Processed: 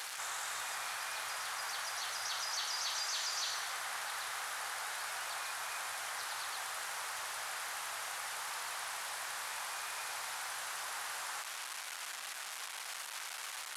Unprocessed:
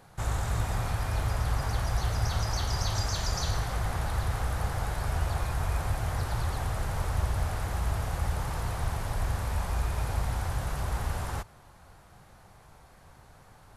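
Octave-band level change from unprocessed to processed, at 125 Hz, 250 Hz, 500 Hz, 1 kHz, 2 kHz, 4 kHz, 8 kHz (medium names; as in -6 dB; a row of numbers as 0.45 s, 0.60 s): under -40 dB, under -25 dB, -13.5 dB, -5.0 dB, +0.5 dB, +1.5 dB, +2.0 dB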